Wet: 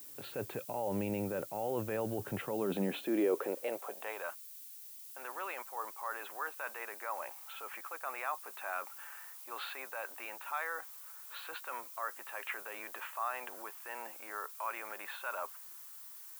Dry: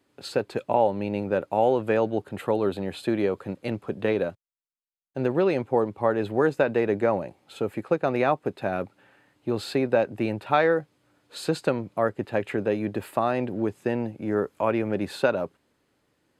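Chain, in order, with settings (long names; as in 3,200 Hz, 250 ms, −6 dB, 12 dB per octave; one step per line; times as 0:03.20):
Butterworth low-pass 3,400 Hz
low-shelf EQ 240 Hz −8 dB
reversed playback
downward compressor, threshold −32 dBFS, peak gain reduction 15.5 dB
reversed playback
brickwall limiter −30 dBFS, peak gain reduction 9.5 dB
transient designer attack −3 dB, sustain +1 dB
high-pass filter sweep 110 Hz → 1,100 Hz, 0:02.34–0:04.30
background noise violet −54 dBFS
level +3.5 dB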